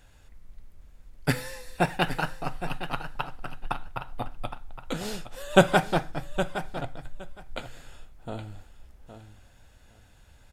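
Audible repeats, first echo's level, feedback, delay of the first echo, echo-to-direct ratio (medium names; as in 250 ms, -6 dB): 2, -11.0 dB, 15%, 815 ms, -11.0 dB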